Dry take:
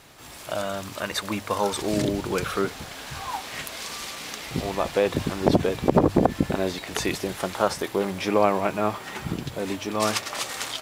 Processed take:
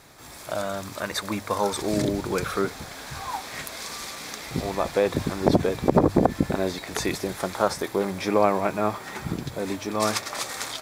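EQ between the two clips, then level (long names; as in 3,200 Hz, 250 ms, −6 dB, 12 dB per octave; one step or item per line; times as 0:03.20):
parametric band 2,900 Hz −10 dB 0.24 octaves
0.0 dB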